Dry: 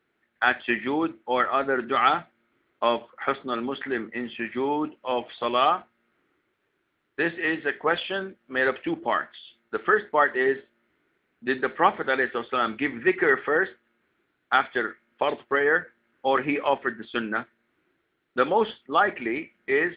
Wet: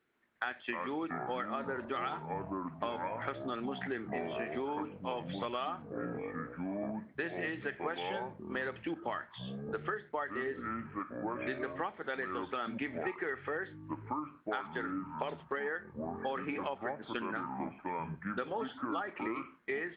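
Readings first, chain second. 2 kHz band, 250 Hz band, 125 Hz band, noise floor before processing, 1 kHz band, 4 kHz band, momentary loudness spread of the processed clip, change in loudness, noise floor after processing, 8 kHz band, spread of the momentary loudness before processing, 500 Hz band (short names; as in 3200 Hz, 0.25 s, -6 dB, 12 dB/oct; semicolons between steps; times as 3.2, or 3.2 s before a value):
-14.0 dB, -8.0 dB, -1.5 dB, -74 dBFS, -12.5 dB, -13.5 dB, 3 LU, -13.0 dB, -57 dBFS, n/a, 9 LU, -12.0 dB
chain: echoes that change speed 0.134 s, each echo -6 st, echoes 3, each echo -6 dB; compressor 10:1, threshold -28 dBFS, peak gain reduction 15.5 dB; gain -5 dB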